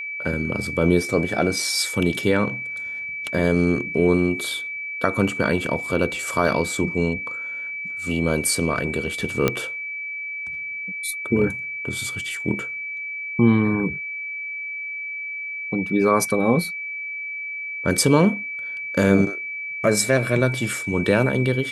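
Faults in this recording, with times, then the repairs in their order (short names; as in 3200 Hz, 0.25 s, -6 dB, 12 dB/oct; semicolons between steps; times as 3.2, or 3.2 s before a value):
tone 2300 Hz -28 dBFS
9.48 pop -5 dBFS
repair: de-click; notch 2300 Hz, Q 30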